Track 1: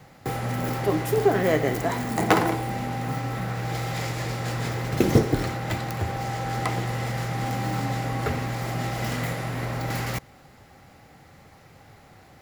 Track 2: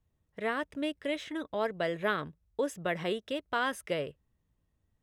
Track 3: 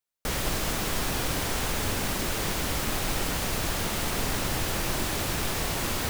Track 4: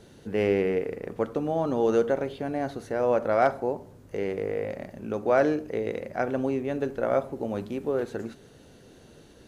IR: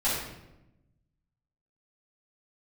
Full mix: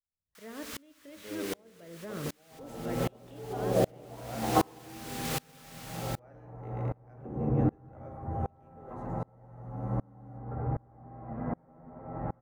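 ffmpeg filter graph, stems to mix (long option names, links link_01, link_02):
-filter_complex "[0:a]lowpass=frequency=1100:width=0.5412,lowpass=frequency=1100:width=1.3066,asplit=2[link_01][link_02];[link_02]adelay=9.5,afreqshift=0.32[link_03];[link_01][link_03]amix=inputs=2:normalize=1,adelay=2250,volume=-4.5dB,asplit=2[link_04][link_05];[link_05]volume=-7dB[link_06];[1:a]acrossover=split=450[link_07][link_08];[link_08]acompressor=threshold=-45dB:ratio=4[link_09];[link_07][link_09]amix=inputs=2:normalize=0,volume=-4dB,asplit=3[link_10][link_11][link_12];[link_11]volume=-12.5dB[link_13];[2:a]highpass=frequency=1100:width=0.5412,highpass=frequency=1100:width=1.3066,adelay=100,volume=-11dB[link_14];[3:a]equalizer=frequency=4000:width=1.8:gain=-8,adelay=900,volume=-12dB,asplit=2[link_15][link_16];[link_16]volume=-15dB[link_17];[link_12]apad=whole_len=273091[link_18];[link_14][link_18]sidechaincompress=threshold=-45dB:ratio=8:attack=20:release=911[link_19];[link_10][link_19]amix=inputs=2:normalize=0,dynaudnorm=framelen=200:gausssize=5:maxgain=11dB,alimiter=limit=-23.5dB:level=0:latency=1:release=25,volume=0dB[link_20];[4:a]atrim=start_sample=2205[link_21];[link_06][link_13][link_17]amix=inputs=3:normalize=0[link_22];[link_22][link_21]afir=irnorm=-1:irlink=0[link_23];[link_04][link_15][link_20][link_23]amix=inputs=4:normalize=0,aeval=exprs='val(0)*pow(10,-32*if(lt(mod(-1.3*n/s,1),2*abs(-1.3)/1000),1-mod(-1.3*n/s,1)/(2*abs(-1.3)/1000),(mod(-1.3*n/s,1)-2*abs(-1.3)/1000)/(1-2*abs(-1.3)/1000))/20)':channel_layout=same"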